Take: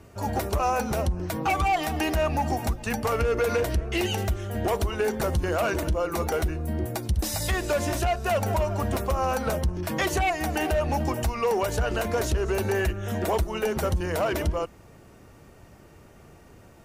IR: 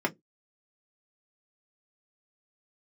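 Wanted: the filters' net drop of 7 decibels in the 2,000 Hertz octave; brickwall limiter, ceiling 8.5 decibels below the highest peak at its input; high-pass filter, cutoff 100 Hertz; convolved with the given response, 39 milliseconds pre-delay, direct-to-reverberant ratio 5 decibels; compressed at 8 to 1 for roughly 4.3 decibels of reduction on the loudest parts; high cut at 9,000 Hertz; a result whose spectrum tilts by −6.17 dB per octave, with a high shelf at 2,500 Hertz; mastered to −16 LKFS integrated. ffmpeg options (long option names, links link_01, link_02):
-filter_complex "[0:a]highpass=100,lowpass=9000,equalizer=frequency=2000:width_type=o:gain=-7,highshelf=frequency=2500:gain=-5,acompressor=threshold=-26dB:ratio=8,alimiter=level_in=2.5dB:limit=-24dB:level=0:latency=1,volume=-2.5dB,asplit=2[link_01][link_02];[1:a]atrim=start_sample=2205,adelay=39[link_03];[link_02][link_03]afir=irnorm=-1:irlink=0,volume=-14.5dB[link_04];[link_01][link_04]amix=inputs=2:normalize=0,volume=16.5dB"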